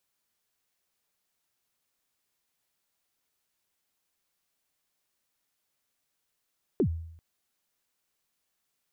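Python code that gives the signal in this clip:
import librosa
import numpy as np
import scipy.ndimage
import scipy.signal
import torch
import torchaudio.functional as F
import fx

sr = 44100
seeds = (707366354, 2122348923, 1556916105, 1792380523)

y = fx.drum_kick(sr, seeds[0], length_s=0.39, level_db=-19, start_hz=450.0, end_hz=82.0, sweep_ms=81.0, decay_s=0.73, click=False)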